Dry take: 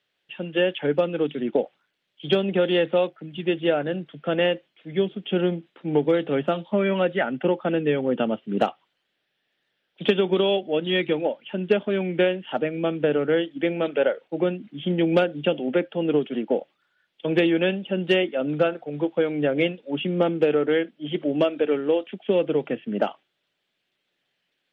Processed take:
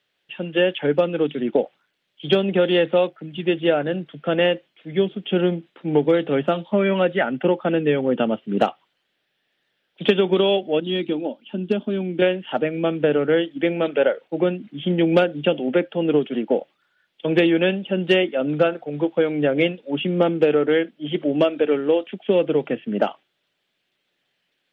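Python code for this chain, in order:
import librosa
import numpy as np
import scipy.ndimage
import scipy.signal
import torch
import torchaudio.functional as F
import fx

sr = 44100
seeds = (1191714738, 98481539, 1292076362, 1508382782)

y = fx.graphic_eq(x, sr, hz=(125, 250, 500, 1000, 2000), db=(-12, 8, -8, -4, -12), at=(10.8, 12.22))
y = F.gain(torch.from_numpy(y), 3.0).numpy()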